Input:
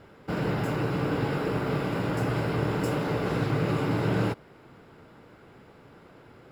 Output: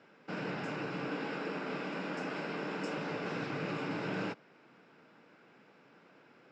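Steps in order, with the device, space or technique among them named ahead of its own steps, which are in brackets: television speaker (speaker cabinet 170–7000 Hz, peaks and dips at 390 Hz -3 dB, 1600 Hz +4 dB, 2500 Hz +7 dB, 5600 Hz +6 dB); 1.08–2.98 steep high-pass 160 Hz; gain -8.5 dB

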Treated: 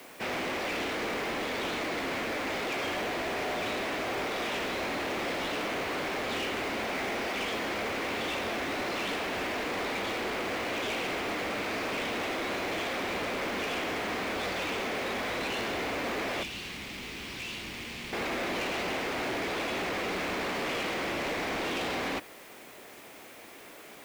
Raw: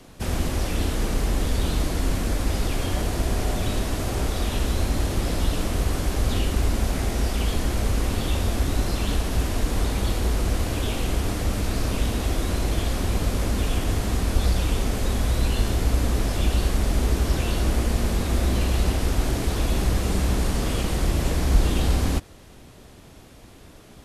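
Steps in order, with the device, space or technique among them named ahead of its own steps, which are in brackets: drive-through speaker (BPF 390–3100 Hz; bell 2200 Hz +7 dB 0.57 oct; hard clip -32 dBFS, distortion -10 dB; white noise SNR 22 dB); 16.43–18.13 EQ curve 140 Hz 0 dB, 620 Hz -18 dB, 920 Hz -12 dB, 1500 Hz -12 dB, 2700 Hz -2 dB; gain +2.5 dB

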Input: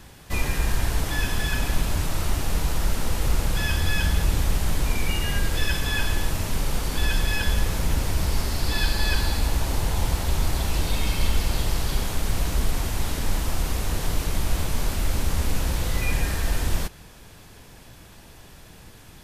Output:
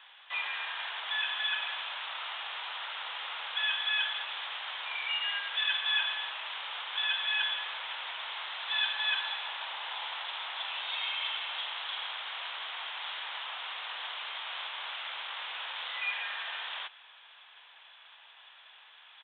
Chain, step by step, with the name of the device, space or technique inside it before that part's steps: musical greeting card (downsampling 8000 Hz; HPF 880 Hz 24 dB/oct; bell 3300 Hz +7 dB 0.55 oct); gain -3 dB

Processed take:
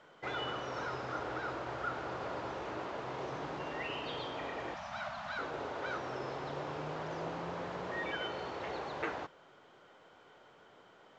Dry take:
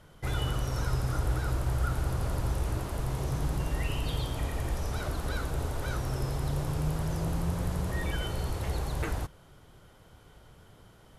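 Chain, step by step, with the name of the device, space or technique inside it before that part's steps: 4.74–5.39 elliptic band-stop 230–630 Hz; telephone (BPF 380–3000 Hz; gain +1 dB; µ-law 128 kbps 16000 Hz)

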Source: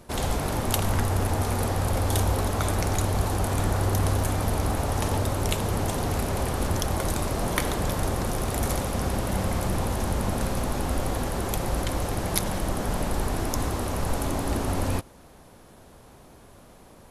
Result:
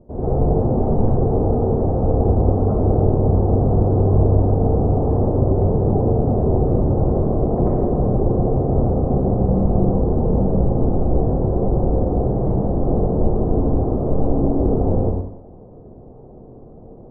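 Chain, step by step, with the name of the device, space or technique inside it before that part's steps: next room (LPF 630 Hz 24 dB/oct; reverb RT60 0.80 s, pre-delay 83 ms, DRR -9.5 dB); gain +2 dB

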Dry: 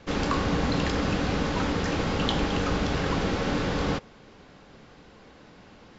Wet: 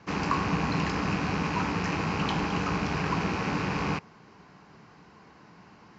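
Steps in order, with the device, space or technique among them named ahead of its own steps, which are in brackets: car door speaker with a rattle (rattling part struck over -39 dBFS, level -23 dBFS; speaker cabinet 91–6800 Hz, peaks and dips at 170 Hz +4 dB, 260 Hz -4 dB, 530 Hz -9 dB, 1000 Hz +6 dB, 3500 Hz -10 dB); gain -1.5 dB

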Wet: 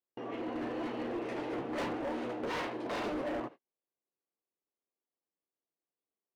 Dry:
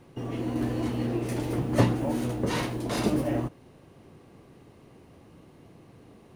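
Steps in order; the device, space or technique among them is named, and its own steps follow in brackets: walkie-talkie (BPF 420–2600 Hz; hard clip -32.5 dBFS, distortion -7 dB; gate -47 dBFS, range -42 dB)

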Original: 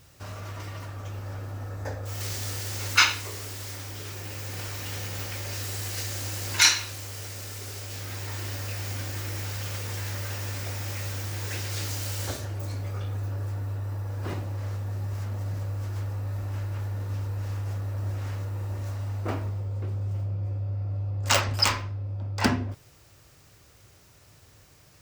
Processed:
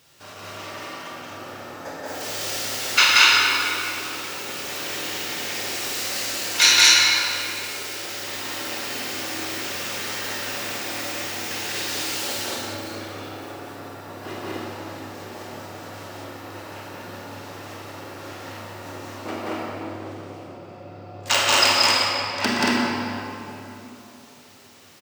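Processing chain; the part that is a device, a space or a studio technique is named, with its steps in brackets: stadium PA (HPF 240 Hz 12 dB/oct; bell 3300 Hz +5 dB 1.2 oct; loudspeakers at several distances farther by 62 m -1 dB, 79 m -2 dB; reverb RT60 3.3 s, pre-delay 25 ms, DRR -2.5 dB); gain -1 dB

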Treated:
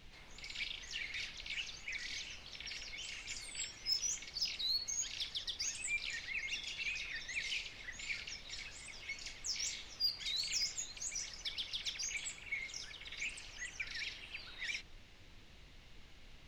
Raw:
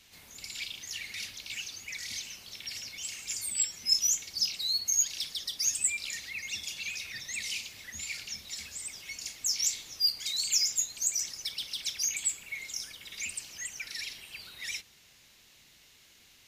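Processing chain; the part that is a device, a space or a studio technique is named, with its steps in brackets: aircraft cabin announcement (BPF 370–3700 Hz; soft clip -25.5 dBFS, distortion -22 dB; brown noise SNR 13 dB); gain -1 dB

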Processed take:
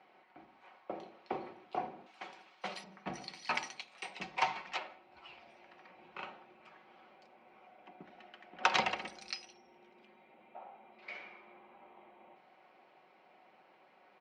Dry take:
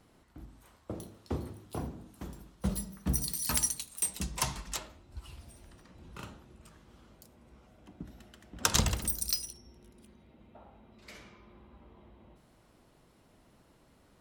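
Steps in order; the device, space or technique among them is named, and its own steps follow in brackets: 2.06–2.84 tilt +4 dB/oct; phone earpiece (speaker cabinet 450–3800 Hz, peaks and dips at 770 Hz +9 dB, 2300 Hz +8 dB, 3600 Hz -5 dB); comb 5.4 ms, depth 40%; gain +1 dB

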